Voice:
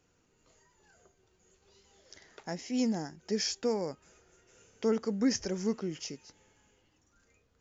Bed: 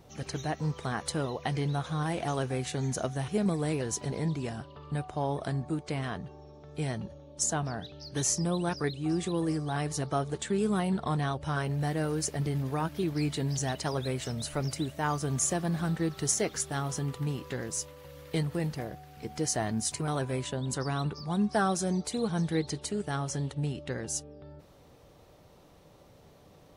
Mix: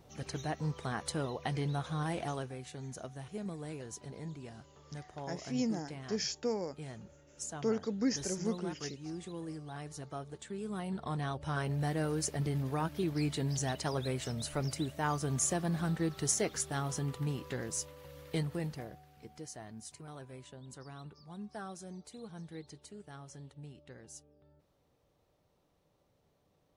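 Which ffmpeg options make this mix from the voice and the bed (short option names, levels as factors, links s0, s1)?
-filter_complex "[0:a]adelay=2800,volume=0.668[s0];[1:a]volume=1.88,afade=t=out:st=2.18:d=0.37:silence=0.375837,afade=t=in:st=10.62:d=1.1:silence=0.334965,afade=t=out:st=18.19:d=1.3:silence=0.199526[s1];[s0][s1]amix=inputs=2:normalize=0"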